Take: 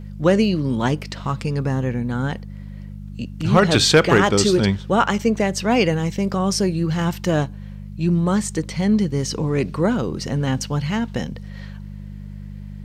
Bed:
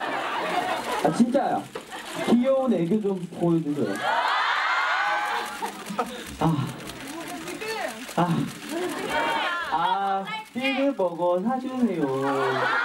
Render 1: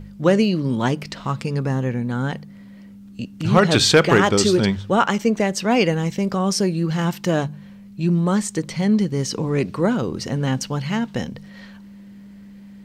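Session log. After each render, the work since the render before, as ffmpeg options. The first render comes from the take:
ffmpeg -i in.wav -af "bandreject=frequency=50:width_type=h:width=4,bandreject=frequency=100:width_type=h:width=4,bandreject=frequency=150:width_type=h:width=4" out.wav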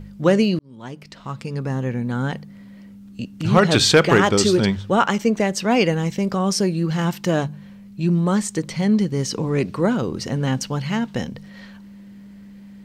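ffmpeg -i in.wav -filter_complex "[0:a]asplit=2[link_01][link_02];[link_01]atrim=end=0.59,asetpts=PTS-STARTPTS,afade=type=out:start_time=0.586:duration=0.004:curve=hsin[link_03];[link_02]atrim=start=0.59,asetpts=PTS-STARTPTS,afade=type=in:duration=1.5[link_04];[link_03][link_04]concat=n=2:v=0:a=1" out.wav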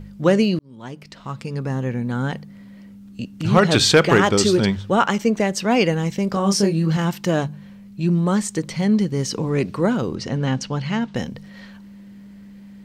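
ffmpeg -i in.wav -filter_complex "[0:a]asettb=1/sr,asplit=3[link_01][link_02][link_03];[link_01]atrim=end=6.324[link_04];[link_02]atrim=start=6.32:end=6.97,asetpts=PTS-STARTPTS,afade=type=in:duration=0.004:curve=qsin,afade=type=out:start_time=0.646:duration=0.004:curve=qsin,asplit=2[link_05][link_06];[link_06]adelay=25,volume=-4dB[link_07];[link_05][link_07]amix=inputs=2:normalize=0,atrim=end_sample=28665[link_08];[link_03]atrim=start=6.966[link_09];[link_04][link_08]acrossfade=duration=0.004:curve1=hsin:curve2=qsin[link_10];[link_10][link_09]acrossfade=duration=0.004:curve1=qsin:curve2=hsin,asettb=1/sr,asplit=3[link_11][link_12][link_13];[link_11]atrim=end=10.154[link_14];[link_12]atrim=start=10.15:end=11.15,asetpts=PTS-STARTPTS,afade=type=in:duration=0.004:curve=qsin,afade=type=out:start_time=0.996:duration=0.004:curve=qsin,lowpass=6100[link_15];[link_13]atrim=start=11.146[link_16];[link_14][link_15]acrossfade=duration=0.004:curve1=hsin:curve2=qsin[link_17];[link_17][link_16]acrossfade=duration=0.004:curve1=qsin:curve2=hsin" out.wav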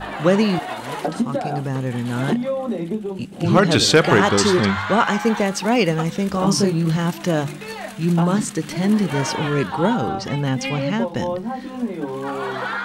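ffmpeg -i in.wav -i bed.wav -filter_complex "[1:a]volume=-2dB[link_01];[0:a][link_01]amix=inputs=2:normalize=0" out.wav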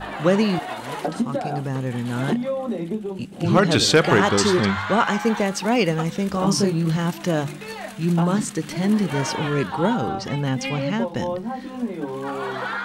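ffmpeg -i in.wav -af "volume=-2dB" out.wav

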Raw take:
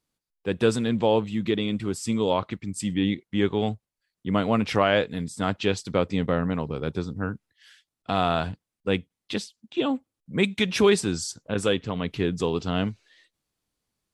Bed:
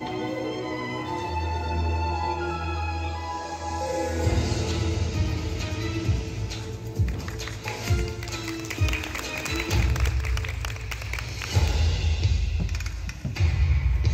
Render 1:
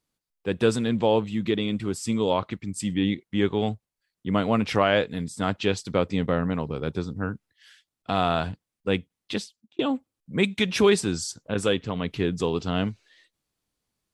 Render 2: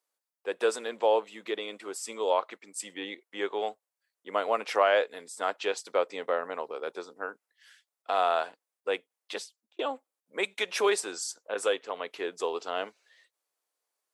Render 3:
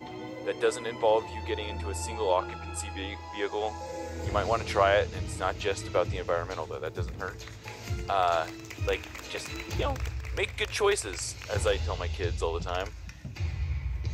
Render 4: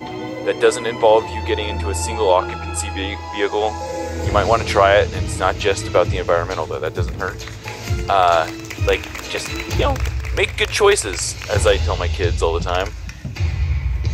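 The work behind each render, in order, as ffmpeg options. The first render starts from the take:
ffmpeg -i in.wav -filter_complex "[0:a]asplit=2[link_01][link_02];[link_01]atrim=end=9.79,asetpts=PTS-STARTPTS,afade=type=out:start_time=9.39:duration=0.4[link_03];[link_02]atrim=start=9.79,asetpts=PTS-STARTPTS,afade=type=in:duration=0.004:curve=hsin[link_04];[link_03][link_04]concat=n=2:v=0:a=1" out.wav
ffmpeg -i in.wav -af "highpass=frequency=470:width=0.5412,highpass=frequency=470:width=1.3066,equalizer=frequency=3500:width_type=o:width=1.6:gain=-6" out.wav
ffmpeg -i in.wav -i bed.wav -filter_complex "[1:a]volume=-10dB[link_01];[0:a][link_01]amix=inputs=2:normalize=0" out.wav
ffmpeg -i in.wav -af "volume=12dB,alimiter=limit=-2dB:level=0:latency=1" out.wav

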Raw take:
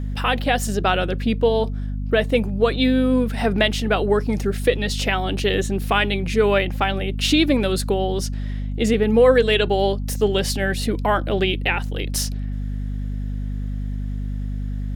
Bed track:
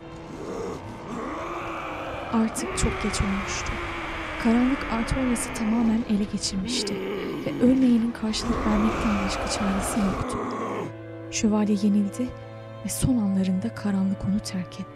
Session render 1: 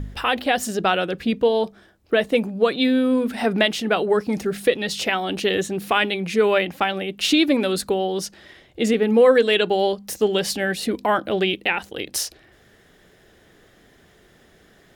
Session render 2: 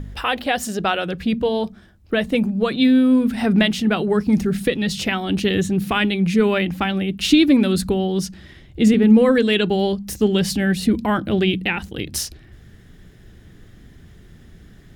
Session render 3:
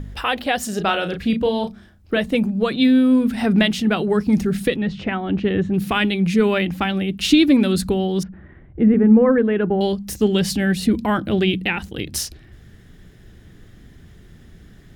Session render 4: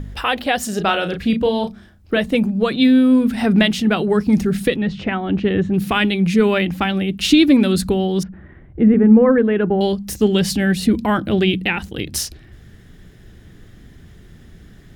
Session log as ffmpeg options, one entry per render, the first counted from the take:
ffmpeg -i in.wav -af "bandreject=frequency=50:width_type=h:width=4,bandreject=frequency=100:width_type=h:width=4,bandreject=frequency=150:width_type=h:width=4,bandreject=frequency=200:width_type=h:width=4,bandreject=frequency=250:width_type=h:width=4" out.wav
ffmpeg -i in.wav -af "bandreject=frequency=46.13:width_type=h:width=4,bandreject=frequency=92.26:width_type=h:width=4,bandreject=frequency=138.39:width_type=h:width=4,bandreject=frequency=184.52:width_type=h:width=4,bandreject=frequency=230.65:width_type=h:width=4,asubboost=boost=8:cutoff=190" out.wav
ffmpeg -i in.wav -filter_complex "[0:a]asettb=1/sr,asplit=3[link_01][link_02][link_03];[link_01]atrim=end=0.694[link_04];[link_02]atrim=start=0.69:end=2.18,asetpts=PTS-STARTPTS,afade=type=in:duration=0.004:curve=qsin,afade=type=out:start_time=1.486:duration=0.004:curve=qsin,asplit=2[link_05][link_06];[link_06]adelay=35,volume=-7.5dB[link_07];[link_05][link_07]amix=inputs=2:normalize=0,atrim=end_sample=65709[link_08];[link_03]atrim=start=2.176[link_09];[link_04][link_08]acrossfade=duration=0.004:curve1=hsin:curve2=qsin[link_10];[link_10][link_09]acrossfade=duration=0.004:curve1=qsin:curve2=hsin,asettb=1/sr,asplit=3[link_11][link_12][link_13];[link_11]atrim=end=4.764[link_14];[link_12]atrim=start=4.76:end=5.74,asetpts=PTS-STARTPTS,afade=type=in:duration=0.004:curve=qsin,afade=type=out:start_time=0.976:duration=0.004:curve=qsin,lowpass=1800[link_15];[link_13]atrim=start=5.736[link_16];[link_14][link_15]acrossfade=duration=0.004:curve1=hsin:curve2=qsin[link_17];[link_17][link_16]acrossfade=duration=0.004:curve1=qsin:curve2=hsin,asettb=1/sr,asplit=3[link_18][link_19][link_20];[link_18]atrim=end=8.234[link_21];[link_19]atrim=start=8.23:end=9.81,asetpts=PTS-STARTPTS,afade=type=in:duration=0.004:curve=qsin,afade=type=out:start_time=1.576:duration=0.004:curve=qsin,lowpass=frequency=1700:width=0.5412,lowpass=frequency=1700:width=1.3066[link_22];[link_20]atrim=start=9.806[link_23];[link_21][link_22]acrossfade=duration=0.004:curve1=hsin:curve2=qsin[link_24];[link_24][link_23]acrossfade=duration=0.004:curve1=qsin:curve2=hsin" out.wav
ffmpeg -i in.wav -af "volume=2dB,alimiter=limit=-2dB:level=0:latency=1" out.wav

